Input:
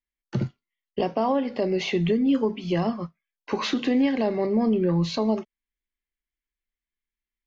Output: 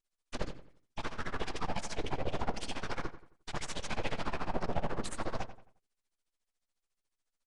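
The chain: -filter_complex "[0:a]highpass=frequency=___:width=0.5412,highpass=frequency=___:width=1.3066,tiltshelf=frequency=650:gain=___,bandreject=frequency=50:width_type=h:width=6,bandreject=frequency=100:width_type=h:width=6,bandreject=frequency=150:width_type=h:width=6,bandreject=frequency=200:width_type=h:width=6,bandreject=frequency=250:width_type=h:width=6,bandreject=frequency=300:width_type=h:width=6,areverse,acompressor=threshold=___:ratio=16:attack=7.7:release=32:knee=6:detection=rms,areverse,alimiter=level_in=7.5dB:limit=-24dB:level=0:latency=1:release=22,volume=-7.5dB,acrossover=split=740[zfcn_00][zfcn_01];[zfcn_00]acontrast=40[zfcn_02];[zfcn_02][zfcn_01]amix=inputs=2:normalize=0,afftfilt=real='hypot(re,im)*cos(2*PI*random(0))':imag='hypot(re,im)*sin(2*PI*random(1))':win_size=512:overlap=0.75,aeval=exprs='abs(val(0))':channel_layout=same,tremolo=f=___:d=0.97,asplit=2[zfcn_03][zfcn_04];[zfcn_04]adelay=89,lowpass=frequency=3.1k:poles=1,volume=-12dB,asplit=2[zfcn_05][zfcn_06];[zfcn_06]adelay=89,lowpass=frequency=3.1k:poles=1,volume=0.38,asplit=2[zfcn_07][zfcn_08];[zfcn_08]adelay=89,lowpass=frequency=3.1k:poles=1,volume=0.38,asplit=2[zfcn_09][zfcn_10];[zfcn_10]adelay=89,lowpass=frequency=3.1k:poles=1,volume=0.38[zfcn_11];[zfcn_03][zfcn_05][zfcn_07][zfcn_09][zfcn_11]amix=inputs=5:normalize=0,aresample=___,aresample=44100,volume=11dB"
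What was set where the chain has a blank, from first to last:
56, 56, -9.5, -32dB, 14, 22050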